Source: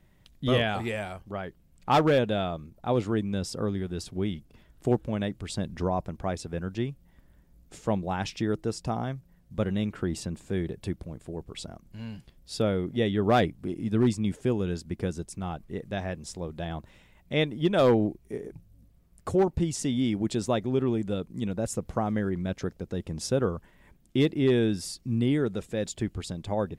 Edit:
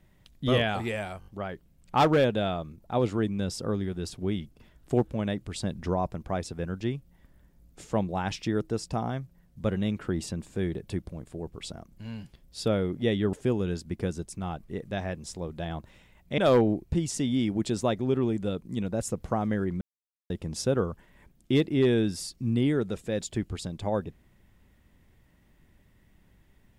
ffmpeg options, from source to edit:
ffmpeg -i in.wav -filter_complex "[0:a]asplit=9[link_01][link_02][link_03][link_04][link_05][link_06][link_07][link_08][link_09];[link_01]atrim=end=1.222[link_10];[link_02]atrim=start=1.198:end=1.222[link_11];[link_03]atrim=start=1.198:end=1.222[link_12];[link_04]atrim=start=1.198:end=13.272[link_13];[link_05]atrim=start=14.328:end=17.382[link_14];[link_06]atrim=start=17.708:end=18.242[link_15];[link_07]atrim=start=19.558:end=22.46,asetpts=PTS-STARTPTS,afade=type=out:start_time=2.898:duration=0.004:curve=hsin[link_16];[link_08]atrim=start=22.46:end=22.95,asetpts=PTS-STARTPTS,volume=0[link_17];[link_09]atrim=start=22.95,asetpts=PTS-STARTPTS,afade=type=in:duration=0.004:curve=hsin[link_18];[link_10][link_11]acrossfade=duration=0.004:curve1=hsin:curve2=hsin[link_19];[link_19][link_12]acrossfade=duration=0.004:curve1=hsin:curve2=hsin[link_20];[link_20][link_13]acrossfade=duration=0.004:curve1=hsin:curve2=hsin[link_21];[link_21][link_14]acrossfade=duration=0.004:curve1=hsin:curve2=hsin[link_22];[link_22][link_15]acrossfade=duration=0.004:curve1=hsin:curve2=hsin[link_23];[link_16][link_17][link_18]concat=n=3:v=0:a=1[link_24];[link_23][link_24]acrossfade=duration=0.004:curve1=hsin:curve2=hsin" out.wav

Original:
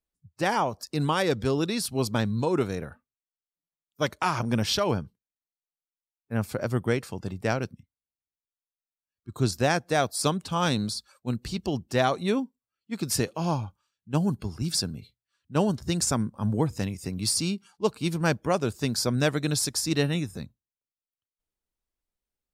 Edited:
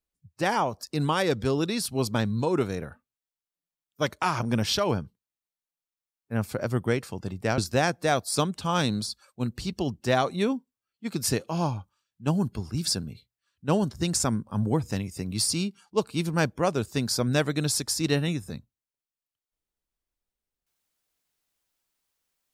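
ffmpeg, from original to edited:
ffmpeg -i in.wav -filter_complex "[0:a]asplit=2[link_01][link_02];[link_01]atrim=end=7.582[link_03];[link_02]atrim=start=9.448[link_04];[link_03][link_04]acrossfade=duration=0.004:curve1=hsin:curve2=hsin" out.wav

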